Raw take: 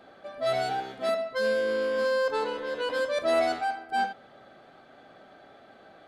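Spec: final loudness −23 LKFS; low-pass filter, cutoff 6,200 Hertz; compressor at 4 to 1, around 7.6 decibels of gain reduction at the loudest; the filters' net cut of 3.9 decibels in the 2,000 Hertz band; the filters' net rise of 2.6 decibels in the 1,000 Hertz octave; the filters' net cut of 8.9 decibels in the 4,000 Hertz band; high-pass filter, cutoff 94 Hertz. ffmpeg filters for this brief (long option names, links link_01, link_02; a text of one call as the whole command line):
ffmpeg -i in.wav -af "highpass=94,lowpass=6200,equalizer=frequency=1000:width_type=o:gain=5.5,equalizer=frequency=2000:width_type=o:gain=-7,equalizer=frequency=4000:width_type=o:gain=-8.5,acompressor=threshold=-29dB:ratio=4,volume=9.5dB" out.wav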